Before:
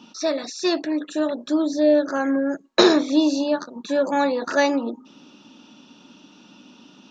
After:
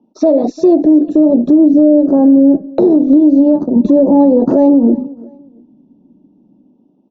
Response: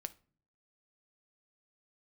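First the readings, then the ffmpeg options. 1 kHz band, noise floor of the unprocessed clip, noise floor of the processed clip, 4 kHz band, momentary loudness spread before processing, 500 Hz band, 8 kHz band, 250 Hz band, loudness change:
+2.5 dB, -52 dBFS, -53 dBFS, under -15 dB, 9 LU, +9.0 dB, n/a, +14.5 dB, +11.5 dB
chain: -filter_complex "[0:a]lowshelf=f=73:g=10.5,agate=range=-32dB:threshold=-40dB:ratio=16:detection=peak,acrossover=split=230[a][b];[a]dynaudnorm=f=310:g=5:m=15dB[c];[c][b]amix=inputs=2:normalize=0,aresample=16000,aresample=44100,firequalizer=gain_entry='entry(100,0);entry(340,9);entry(750,5);entry(1400,-25)':delay=0.05:min_phase=1,acompressor=threshold=-23dB:ratio=12,asplit=2[d][e];[e]aecho=0:1:348|696:0.0668|0.0194[f];[d][f]amix=inputs=2:normalize=0,alimiter=level_in=20.5dB:limit=-1dB:release=50:level=0:latency=1,volume=-1dB"

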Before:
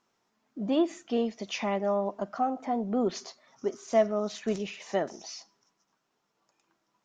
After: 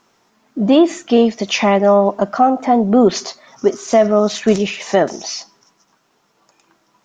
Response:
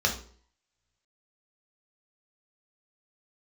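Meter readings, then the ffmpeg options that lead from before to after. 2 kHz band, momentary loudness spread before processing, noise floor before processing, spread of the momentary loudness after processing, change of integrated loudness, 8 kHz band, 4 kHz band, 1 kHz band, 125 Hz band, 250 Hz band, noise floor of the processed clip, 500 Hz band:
+16.0 dB, 14 LU, -78 dBFS, 13 LU, +15.5 dB, n/a, +16.0 dB, +15.5 dB, +16.5 dB, +16.0 dB, -62 dBFS, +15.0 dB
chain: -af "alimiter=level_in=17.5dB:limit=-1dB:release=50:level=0:latency=1,volume=-1dB"

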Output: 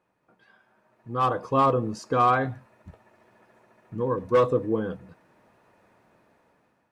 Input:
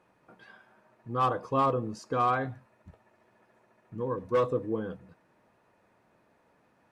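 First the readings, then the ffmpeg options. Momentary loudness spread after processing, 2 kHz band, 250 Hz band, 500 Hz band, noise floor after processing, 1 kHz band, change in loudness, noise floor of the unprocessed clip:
13 LU, +5.5 dB, +5.5 dB, +5.5 dB, -70 dBFS, +5.0 dB, +5.0 dB, -68 dBFS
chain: -af "dynaudnorm=f=450:g=5:m=13dB,volume=-7dB"

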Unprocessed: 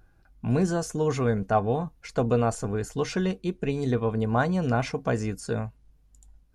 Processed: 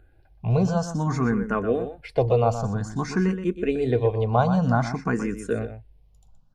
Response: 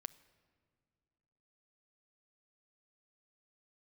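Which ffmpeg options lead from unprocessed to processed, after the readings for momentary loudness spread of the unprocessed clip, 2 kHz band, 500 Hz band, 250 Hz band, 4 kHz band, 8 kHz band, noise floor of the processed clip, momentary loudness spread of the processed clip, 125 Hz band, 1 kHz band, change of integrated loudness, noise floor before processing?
7 LU, +1.5 dB, +2.5 dB, +2.5 dB, -1.5 dB, -3.0 dB, -57 dBFS, 8 LU, +3.5 dB, +2.5 dB, +2.5 dB, -60 dBFS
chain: -filter_complex "[0:a]highshelf=f=4.6k:g=-9.5,asplit=2[a][b];[b]adelay=122.4,volume=-10dB,highshelf=f=4k:g=-2.76[c];[a][c]amix=inputs=2:normalize=0,asplit=2[d][e];[e]afreqshift=0.53[f];[d][f]amix=inputs=2:normalize=1,volume=5.5dB"

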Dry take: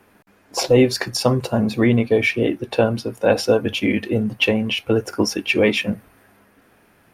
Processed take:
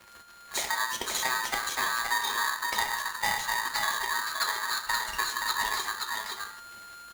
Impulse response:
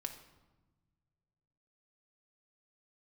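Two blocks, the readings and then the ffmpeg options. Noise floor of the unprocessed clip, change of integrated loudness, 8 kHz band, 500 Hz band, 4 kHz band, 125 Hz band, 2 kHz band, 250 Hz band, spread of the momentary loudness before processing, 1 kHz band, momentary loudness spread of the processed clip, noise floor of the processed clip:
-56 dBFS, -9.5 dB, +0.5 dB, -26.5 dB, -4.5 dB, -31.5 dB, -3.5 dB, -31.5 dB, 6 LU, +1.5 dB, 7 LU, -51 dBFS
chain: -filter_complex "[0:a]equalizer=f=120:w=1.6:g=-4,acompressor=threshold=-30dB:ratio=5,acrusher=bits=9:dc=4:mix=0:aa=0.000001,aecho=1:1:523:0.631[a];[1:a]atrim=start_sample=2205,atrim=end_sample=3969,asetrate=25578,aresample=44100[b];[a][b]afir=irnorm=-1:irlink=0,aeval=exprs='val(0)*sgn(sin(2*PI*1400*n/s))':c=same"

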